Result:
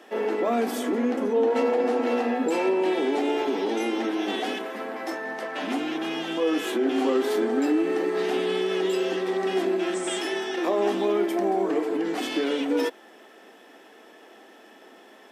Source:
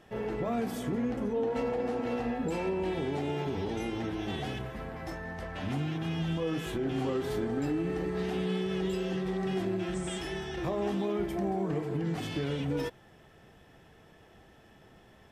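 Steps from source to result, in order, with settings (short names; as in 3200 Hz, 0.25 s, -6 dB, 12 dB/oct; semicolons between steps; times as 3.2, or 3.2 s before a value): steep high-pass 240 Hz 48 dB/oct; gain +9 dB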